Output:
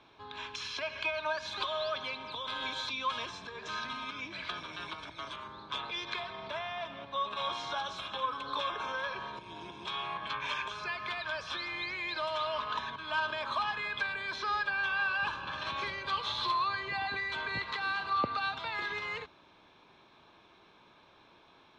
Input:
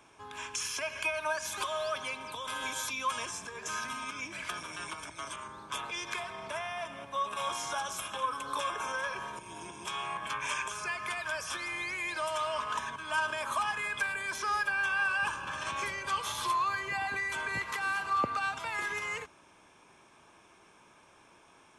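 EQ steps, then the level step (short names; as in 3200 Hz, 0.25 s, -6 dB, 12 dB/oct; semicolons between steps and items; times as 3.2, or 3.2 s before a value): synth low-pass 4000 Hz, resonance Q 8.7; high shelf 2600 Hz -11.5 dB; 0.0 dB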